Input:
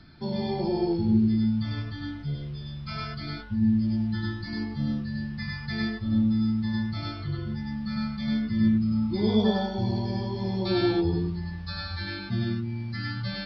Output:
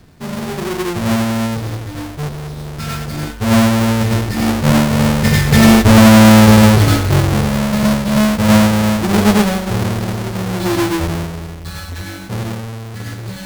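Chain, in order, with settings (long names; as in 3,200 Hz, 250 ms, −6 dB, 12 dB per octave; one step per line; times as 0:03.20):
each half-wave held at its own peak
source passing by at 0:06.10, 10 m/s, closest 6.8 metres
boost into a limiter +21 dB
level −1 dB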